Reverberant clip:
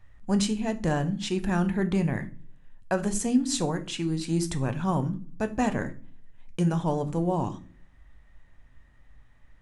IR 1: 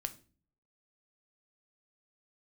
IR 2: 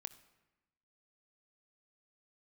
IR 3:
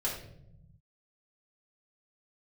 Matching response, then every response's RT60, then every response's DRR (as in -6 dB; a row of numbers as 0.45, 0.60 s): 1; 0.40, 1.1, 0.75 s; 9.0, 11.5, -6.5 dB